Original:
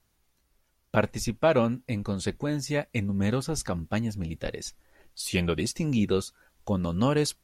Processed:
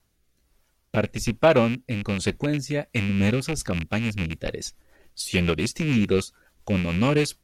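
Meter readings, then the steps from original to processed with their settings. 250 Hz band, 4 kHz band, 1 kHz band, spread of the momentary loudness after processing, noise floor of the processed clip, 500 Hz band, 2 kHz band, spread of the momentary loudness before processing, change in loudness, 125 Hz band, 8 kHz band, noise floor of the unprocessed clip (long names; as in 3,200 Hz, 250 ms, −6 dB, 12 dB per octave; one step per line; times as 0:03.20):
+3.5 dB, +4.0 dB, +2.5 dB, 11 LU, −68 dBFS, +3.5 dB, +6.0 dB, 10 LU, +3.5 dB, +4.0 dB, +1.5 dB, −71 dBFS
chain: loose part that buzzes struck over −30 dBFS, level −22 dBFS
rotating-speaker cabinet horn 1.2 Hz, later 7 Hz, at 0:02.73
level +5 dB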